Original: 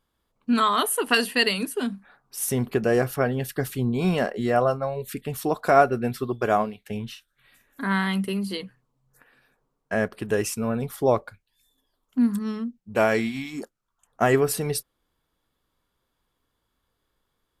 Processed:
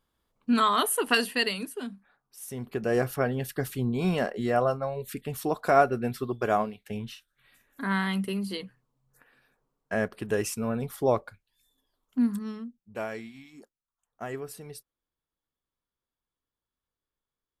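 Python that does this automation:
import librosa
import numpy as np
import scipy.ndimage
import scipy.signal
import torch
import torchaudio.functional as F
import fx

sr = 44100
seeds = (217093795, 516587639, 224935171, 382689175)

y = fx.gain(x, sr, db=fx.line((1.05, -2.0), (2.45, -14.5), (2.98, -3.5), (12.21, -3.5), (13.28, -16.5)))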